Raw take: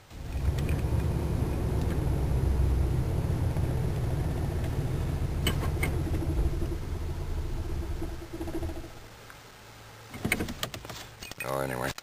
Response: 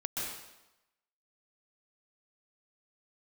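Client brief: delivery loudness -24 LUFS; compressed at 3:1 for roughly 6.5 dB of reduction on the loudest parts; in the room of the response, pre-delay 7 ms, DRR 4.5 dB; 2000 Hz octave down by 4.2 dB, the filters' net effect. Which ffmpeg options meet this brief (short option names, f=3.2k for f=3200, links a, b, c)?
-filter_complex "[0:a]equalizer=f=2k:t=o:g=-5,acompressor=threshold=-31dB:ratio=3,asplit=2[a][b];[1:a]atrim=start_sample=2205,adelay=7[c];[b][c]afir=irnorm=-1:irlink=0,volume=-8.5dB[d];[a][d]amix=inputs=2:normalize=0,volume=11.5dB"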